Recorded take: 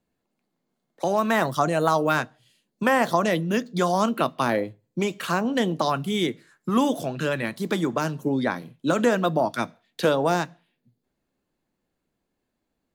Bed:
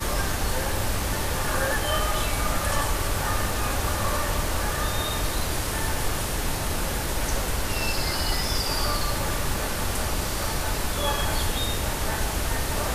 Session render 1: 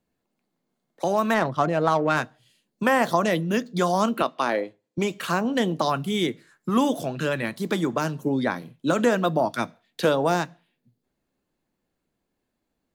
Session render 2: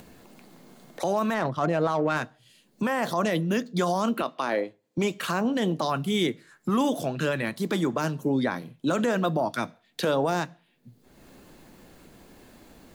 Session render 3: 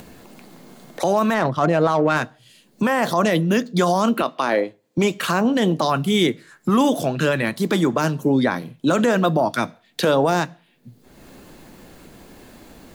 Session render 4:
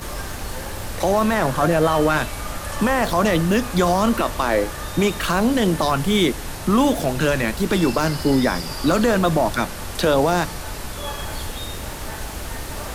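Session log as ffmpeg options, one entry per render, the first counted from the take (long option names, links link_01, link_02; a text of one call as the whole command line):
ffmpeg -i in.wav -filter_complex "[0:a]asettb=1/sr,asplit=3[link_01][link_02][link_03];[link_01]atrim=end=1.344[link_04];[link_02]atrim=start=1.34:end=2.17,asetpts=PTS-STARTPTS,afade=type=in:duration=0.004:curve=qsin,afade=type=out:start_time=0.826:duration=0.004:curve=qsin,adynamicsmooth=sensitivity=1.5:basefreq=1900[link_05];[link_03]atrim=start=2.166[link_06];[link_04][link_05]acrossfade=duration=0.004:curve1=hsin:curve2=qsin[link_07];[link_07][link_06]acrossfade=duration=0.004:curve1=qsin:curve2=hsin,asettb=1/sr,asplit=3[link_08][link_09][link_10];[link_08]atrim=end=4.224[link_11];[link_09]atrim=start=4.22:end=4.98,asetpts=PTS-STARTPTS,afade=type=in:duration=0.004:curve=qsin,afade=type=out:start_time=0.756:duration=0.004:curve=qsin,highpass=310,lowpass=7600[link_12];[link_10]atrim=start=4.976[link_13];[link_11][link_12]acrossfade=duration=0.004:curve1=hsin:curve2=qsin[link_14];[link_14][link_13]acrossfade=duration=0.004:curve1=qsin:curve2=hsin" out.wav
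ffmpeg -i in.wav -af "acompressor=mode=upward:threshold=-29dB:ratio=2.5,alimiter=limit=-16dB:level=0:latency=1:release=23" out.wav
ffmpeg -i in.wav -af "volume=7dB" out.wav
ffmpeg -i in.wav -i bed.wav -filter_complex "[1:a]volume=-4dB[link_01];[0:a][link_01]amix=inputs=2:normalize=0" out.wav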